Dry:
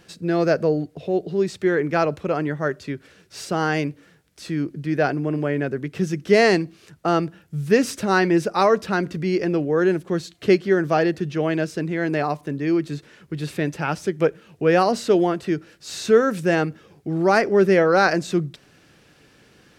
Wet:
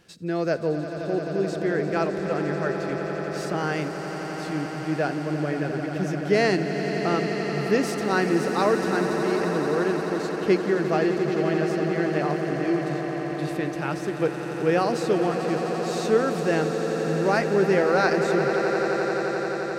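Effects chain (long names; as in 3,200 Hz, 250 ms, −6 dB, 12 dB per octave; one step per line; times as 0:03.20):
echo that builds up and dies away 87 ms, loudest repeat 8, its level −12 dB
level −5.5 dB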